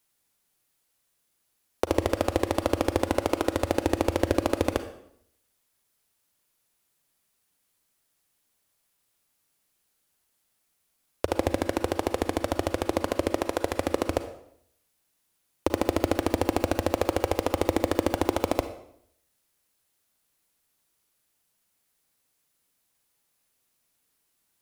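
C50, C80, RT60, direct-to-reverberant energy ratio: 10.5 dB, 13.0 dB, 0.70 s, 9.5 dB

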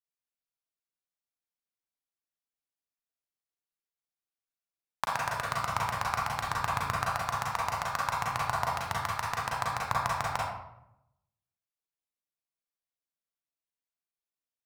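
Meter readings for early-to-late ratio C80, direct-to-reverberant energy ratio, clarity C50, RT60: 3.5 dB, -4.5 dB, -1.0 dB, 0.85 s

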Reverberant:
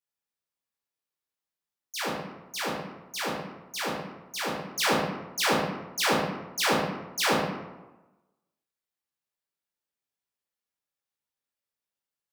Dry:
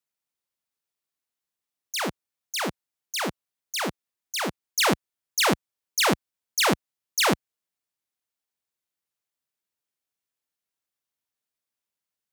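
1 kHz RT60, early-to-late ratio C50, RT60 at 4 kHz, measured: 1.1 s, 1.5 dB, 0.60 s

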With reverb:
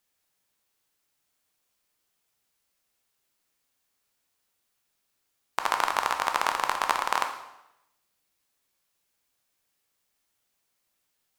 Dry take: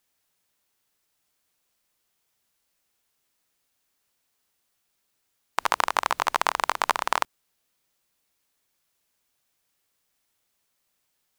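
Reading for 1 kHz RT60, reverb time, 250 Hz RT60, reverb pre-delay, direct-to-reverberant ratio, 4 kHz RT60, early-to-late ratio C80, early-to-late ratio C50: 0.90 s, 0.90 s, 0.80 s, 6 ms, 4.5 dB, 0.80 s, 10.0 dB, 7.5 dB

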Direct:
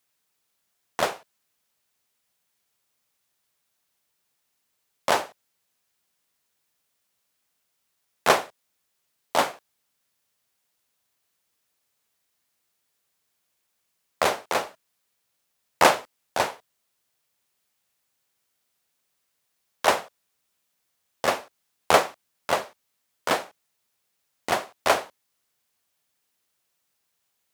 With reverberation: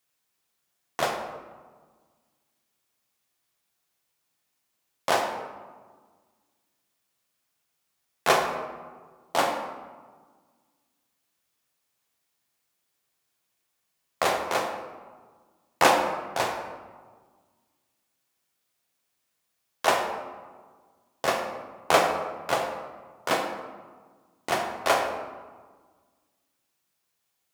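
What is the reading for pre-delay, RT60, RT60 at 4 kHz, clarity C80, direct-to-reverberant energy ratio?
3 ms, 1.5 s, 0.75 s, 7.0 dB, 2.0 dB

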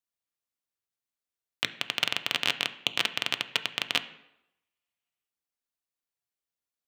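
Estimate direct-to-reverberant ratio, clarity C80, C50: 9.0 dB, 17.5 dB, 15.0 dB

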